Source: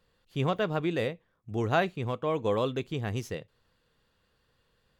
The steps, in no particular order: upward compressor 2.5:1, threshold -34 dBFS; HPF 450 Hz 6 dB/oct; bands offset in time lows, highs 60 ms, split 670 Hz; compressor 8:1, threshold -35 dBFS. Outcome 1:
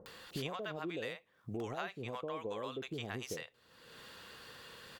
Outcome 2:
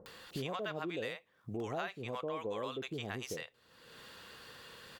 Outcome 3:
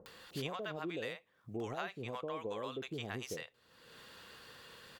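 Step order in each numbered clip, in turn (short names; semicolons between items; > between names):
HPF > upward compressor > compressor > bands offset in time; HPF > upward compressor > bands offset in time > compressor; upward compressor > HPF > compressor > bands offset in time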